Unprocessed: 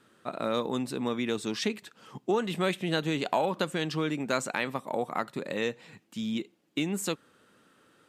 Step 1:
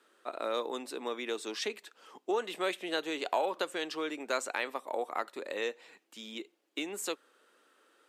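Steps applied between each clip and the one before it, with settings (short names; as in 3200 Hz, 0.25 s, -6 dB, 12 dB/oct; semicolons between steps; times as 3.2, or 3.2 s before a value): HPF 340 Hz 24 dB/oct; gain -3 dB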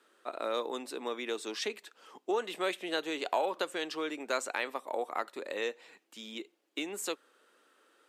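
nothing audible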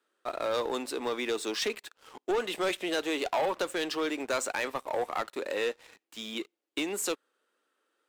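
sample leveller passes 3; gain -5 dB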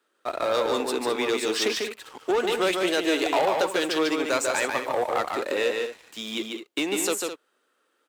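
HPF 44 Hz; on a send: loudspeakers at several distances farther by 50 m -4 dB, 72 m -11 dB; on the sum: gain +5 dB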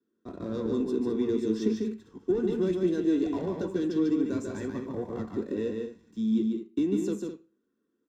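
EQ curve 200 Hz 0 dB, 450 Hz -10 dB, 2200 Hz -20 dB; reverb RT60 0.35 s, pre-delay 3 ms, DRR 7.5 dB; gain -5.5 dB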